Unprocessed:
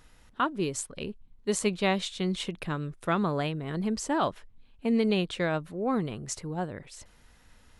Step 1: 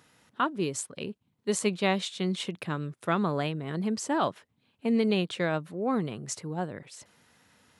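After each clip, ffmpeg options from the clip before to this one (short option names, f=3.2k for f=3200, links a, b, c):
-af "highpass=f=110:w=0.5412,highpass=f=110:w=1.3066"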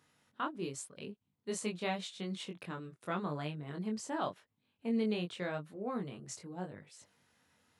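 -af "flanger=delay=20:depth=3.2:speed=0.87,volume=-6.5dB"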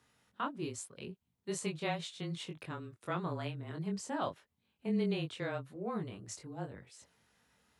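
-af "afreqshift=-23"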